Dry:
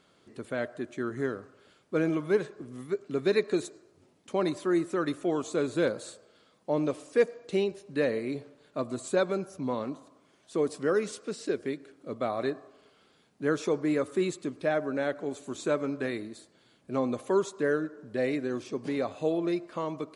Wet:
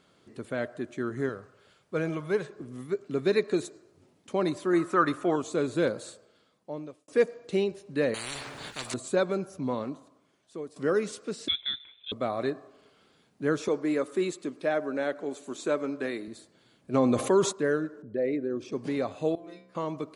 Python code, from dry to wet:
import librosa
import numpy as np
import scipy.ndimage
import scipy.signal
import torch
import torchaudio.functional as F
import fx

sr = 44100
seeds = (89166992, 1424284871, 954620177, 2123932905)

y = fx.peak_eq(x, sr, hz=280.0, db=-8.5, octaves=0.77, at=(1.29, 2.48))
y = fx.peak_eq(y, sr, hz=1200.0, db=12.5, octaves=1.1, at=(4.73, 5.36))
y = fx.spectral_comp(y, sr, ratio=10.0, at=(8.14, 8.94))
y = fx.freq_invert(y, sr, carrier_hz=3800, at=(11.48, 12.12))
y = fx.highpass(y, sr, hz=230.0, slope=12, at=(13.68, 16.28))
y = fx.env_flatten(y, sr, amount_pct=50, at=(16.93, 17.51), fade=0.02)
y = fx.envelope_sharpen(y, sr, power=1.5, at=(18.02, 18.72))
y = fx.stiff_resonator(y, sr, f0_hz=62.0, decay_s=0.79, stiffness=0.002, at=(19.35, 19.75))
y = fx.edit(y, sr, fx.fade_out_span(start_s=6.04, length_s=1.04),
    fx.fade_out_to(start_s=9.74, length_s=1.02, floor_db=-16.0), tone=tone)
y = fx.peak_eq(y, sr, hz=120.0, db=2.5, octaves=2.1)